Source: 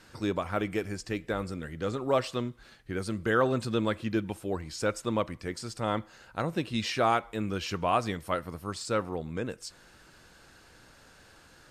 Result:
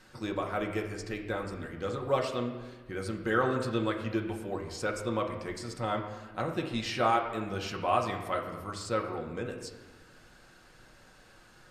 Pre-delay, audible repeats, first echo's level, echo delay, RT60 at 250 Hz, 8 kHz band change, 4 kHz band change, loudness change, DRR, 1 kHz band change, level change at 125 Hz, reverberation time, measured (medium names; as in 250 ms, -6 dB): 4 ms, no echo, no echo, no echo, 1.6 s, -3.5 dB, -2.5 dB, -1.5 dB, 1.0 dB, -0.5 dB, -2.5 dB, 1.3 s